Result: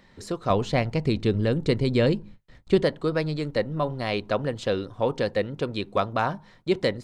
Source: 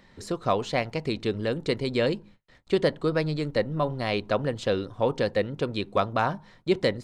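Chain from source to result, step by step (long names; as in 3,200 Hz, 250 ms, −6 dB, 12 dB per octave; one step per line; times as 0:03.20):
0:00.50–0:02.83: low-shelf EQ 230 Hz +11.5 dB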